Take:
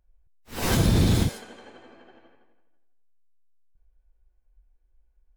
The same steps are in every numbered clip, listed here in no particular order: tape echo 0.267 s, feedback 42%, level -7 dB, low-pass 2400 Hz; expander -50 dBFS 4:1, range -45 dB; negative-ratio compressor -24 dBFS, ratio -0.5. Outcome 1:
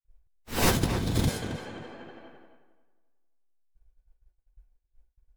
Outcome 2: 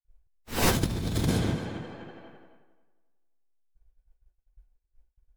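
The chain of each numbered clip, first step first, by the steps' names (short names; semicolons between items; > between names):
negative-ratio compressor > tape echo > expander; tape echo > negative-ratio compressor > expander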